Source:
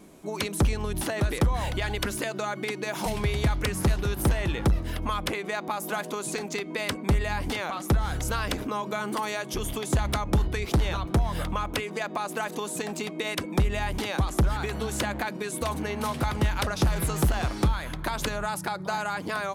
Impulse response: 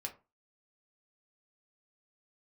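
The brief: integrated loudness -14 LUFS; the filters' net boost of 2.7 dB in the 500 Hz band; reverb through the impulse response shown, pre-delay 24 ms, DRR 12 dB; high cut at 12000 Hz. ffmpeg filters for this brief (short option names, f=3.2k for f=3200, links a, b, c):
-filter_complex "[0:a]lowpass=12k,equalizer=f=500:t=o:g=3.5,asplit=2[a][b];[1:a]atrim=start_sample=2205,adelay=24[c];[b][c]afir=irnorm=-1:irlink=0,volume=-10.5dB[d];[a][d]amix=inputs=2:normalize=0,volume=13.5dB"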